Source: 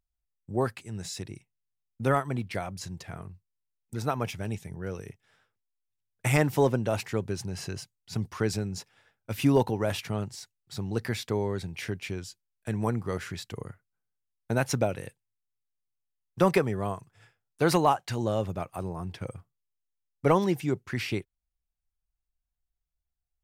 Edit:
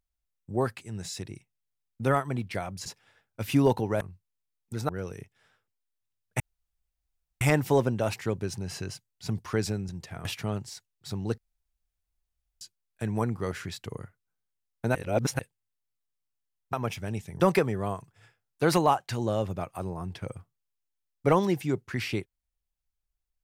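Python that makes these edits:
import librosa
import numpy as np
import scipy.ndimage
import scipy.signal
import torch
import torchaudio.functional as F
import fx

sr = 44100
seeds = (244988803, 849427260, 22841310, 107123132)

y = fx.edit(x, sr, fx.swap(start_s=2.86, length_s=0.36, other_s=8.76, other_length_s=1.15),
    fx.move(start_s=4.1, length_s=0.67, to_s=16.39),
    fx.insert_room_tone(at_s=6.28, length_s=1.01),
    fx.room_tone_fill(start_s=11.04, length_s=1.23),
    fx.reverse_span(start_s=14.61, length_s=0.44), tone=tone)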